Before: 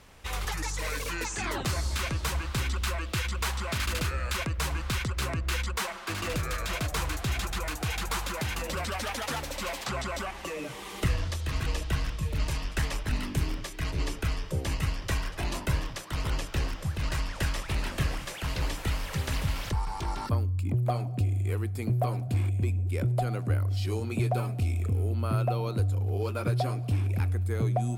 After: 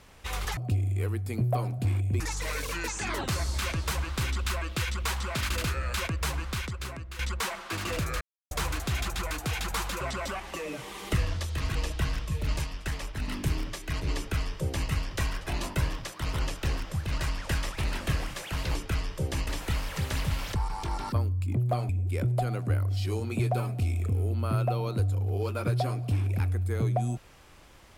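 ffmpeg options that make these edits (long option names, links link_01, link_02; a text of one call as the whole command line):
ffmpeg -i in.wav -filter_complex "[0:a]asplit=12[link_01][link_02][link_03][link_04][link_05][link_06][link_07][link_08][link_09][link_10][link_11][link_12];[link_01]atrim=end=0.572[link_13];[link_02]atrim=start=21.058:end=22.692[link_14];[link_03]atrim=start=0.568:end=5.56,asetpts=PTS-STARTPTS,afade=type=out:start_time=4.062:duration=0.93:silence=0.211349[link_15];[link_04]atrim=start=5.56:end=6.58,asetpts=PTS-STARTPTS,afade=type=in:duration=0.004:curve=hsin:silence=0.211349,afade=type=out:start_time=1.016:duration=0.004:curve=hsin[link_16];[link_05]atrim=start=6.58:end=6.88,asetpts=PTS-STARTPTS,volume=0[link_17];[link_06]atrim=start=6.88:end=8.382,asetpts=PTS-STARTPTS,afade=type=in:duration=0.004:curve=hsin[link_18];[link_07]atrim=start=9.918:end=12.552[link_19];[link_08]atrim=start=12.548:end=13.192,asetpts=PTS-STARTPTS,volume=-4dB[link_20];[link_09]atrim=start=13.188:end=18.662[link_21];[link_10]atrim=start=14.078:end=14.822[link_22];[link_11]atrim=start=18.658:end=21.062[link_23];[link_12]atrim=start=22.688[link_24];[link_13][link_14]acrossfade=duration=0.004:curve1=hsin:curve2=hsin[link_25];[link_15][link_16][link_17][link_18]concat=n=4:v=0:a=1[link_26];[link_25][link_26]acrossfade=duration=0.004:curve1=hsin:curve2=hsin[link_27];[link_27][link_19]acrossfade=duration=0.004:curve1=hsin:curve2=hsin[link_28];[link_28][link_20]acrossfade=duration=0.004:curve1=hsin:curve2=hsin[link_29];[link_29][link_21]acrossfade=duration=0.004:curve1=hsin:curve2=hsin[link_30];[link_30][link_22]acrossfade=duration=0.004:curve1=hsin:curve2=hsin[link_31];[link_31][link_23]acrossfade=duration=0.004:curve1=hsin:curve2=hsin[link_32];[link_32][link_24]acrossfade=duration=0.004:curve1=hsin:curve2=hsin" out.wav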